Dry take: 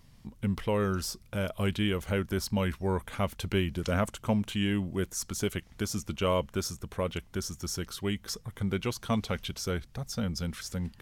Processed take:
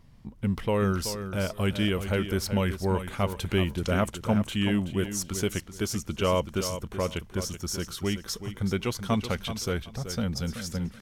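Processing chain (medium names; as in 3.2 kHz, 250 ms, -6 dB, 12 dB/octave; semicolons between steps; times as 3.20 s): feedback delay 379 ms, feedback 22%, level -10 dB; tape noise reduction on one side only decoder only; trim +2.5 dB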